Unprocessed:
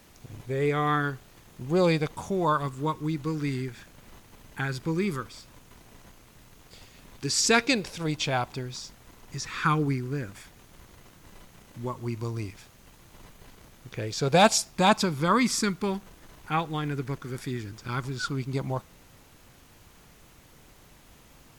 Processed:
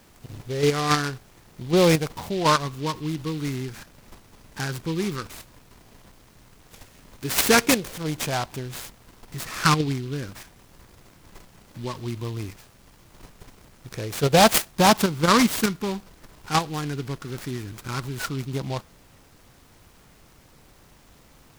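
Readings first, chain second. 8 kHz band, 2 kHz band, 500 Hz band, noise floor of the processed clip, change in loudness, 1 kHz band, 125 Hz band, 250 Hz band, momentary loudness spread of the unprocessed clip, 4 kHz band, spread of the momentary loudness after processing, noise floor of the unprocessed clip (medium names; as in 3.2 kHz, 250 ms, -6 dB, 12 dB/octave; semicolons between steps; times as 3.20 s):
+4.0 dB, +3.0 dB, +3.5 dB, -54 dBFS, +4.0 dB, +3.5 dB, +2.5 dB, +3.5 dB, 16 LU, +4.5 dB, 18 LU, -55 dBFS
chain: in parallel at +1 dB: level held to a coarse grid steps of 24 dB; on the sum: delay time shaken by noise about 3.2 kHz, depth 0.069 ms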